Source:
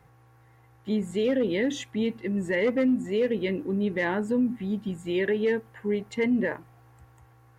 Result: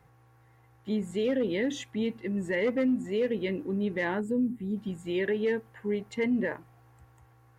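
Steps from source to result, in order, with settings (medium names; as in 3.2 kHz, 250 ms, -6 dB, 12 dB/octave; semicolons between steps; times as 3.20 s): time-frequency box 4.21–4.77 s, 510–7000 Hz -10 dB; trim -3 dB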